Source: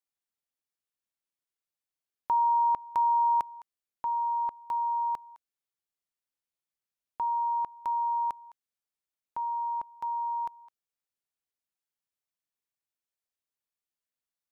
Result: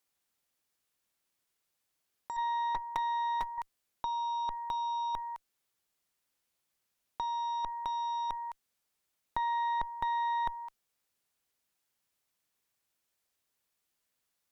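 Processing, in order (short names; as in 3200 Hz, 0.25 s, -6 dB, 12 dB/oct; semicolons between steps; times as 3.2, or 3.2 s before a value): 2.36–3.58 notch comb 190 Hz; added harmonics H 2 -19 dB, 5 -40 dB, 8 -20 dB, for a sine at -20.5 dBFS; negative-ratio compressor -36 dBFS, ratio -1; gain +3.5 dB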